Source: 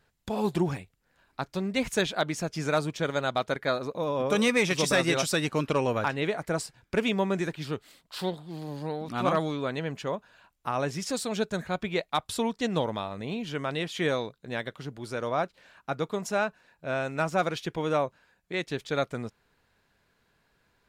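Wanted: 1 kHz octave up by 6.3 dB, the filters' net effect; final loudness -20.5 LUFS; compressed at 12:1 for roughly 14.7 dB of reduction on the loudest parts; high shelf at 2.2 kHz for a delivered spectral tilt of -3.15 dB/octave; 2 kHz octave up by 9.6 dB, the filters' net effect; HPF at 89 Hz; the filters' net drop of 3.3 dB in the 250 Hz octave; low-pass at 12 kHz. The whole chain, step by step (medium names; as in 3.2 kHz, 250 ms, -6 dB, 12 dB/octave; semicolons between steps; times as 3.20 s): high-pass 89 Hz; low-pass 12 kHz; peaking EQ 250 Hz -5 dB; peaking EQ 1 kHz +5 dB; peaking EQ 2 kHz +8 dB; treble shelf 2.2 kHz +5 dB; compression 12:1, threshold -28 dBFS; trim +13 dB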